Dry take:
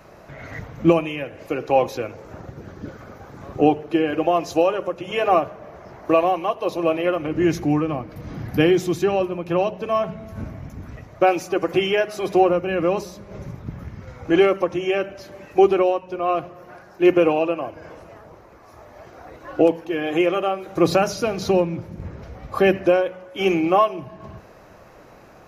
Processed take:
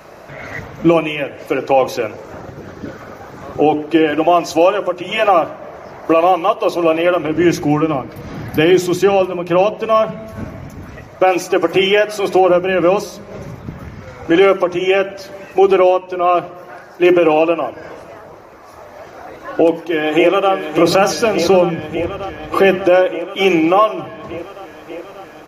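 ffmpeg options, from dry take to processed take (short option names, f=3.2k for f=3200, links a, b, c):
-filter_complex "[0:a]asettb=1/sr,asplit=3[a][b][c];[a]atrim=end=4.124[d];[b]atrim=start=4.12:end=5.63,asetpts=PTS-STARTPTS,afade=t=in:d=0.004:c=qsin,afade=t=out:st=1.506:d=0.004:c=qsin,bandreject=f=450:w=6.9[e];[c]atrim=start=5.626[f];[d][e]acrossfade=d=0.004:c1=hsin:c2=qsin[g];[g][f]acrossfade=d=0.004:c1=qsin:c2=hsin,asplit=2[h][i];[i]afade=t=in:st=19.38:d=0.01,afade=t=out:st=20.52:d=0.01,aecho=0:1:590|1180|1770|2360|2950|3540|4130|4720|5310|5900|6490|7080:0.375837|0.30067|0.240536|0.192429|0.153943|0.123154|0.0985235|0.0788188|0.0630551|0.050444|0.0403552|0.0322842[j];[h][j]amix=inputs=2:normalize=0,lowshelf=f=160:g=-8.5,bandreject=f=60:t=h:w=6,bandreject=f=120:t=h:w=6,bandreject=f=180:t=h:w=6,bandreject=f=240:t=h:w=6,bandreject=f=300:t=h:w=6,bandreject=f=360:t=h:w=6,alimiter=level_in=10dB:limit=-1dB:release=50:level=0:latency=1,volume=-1dB"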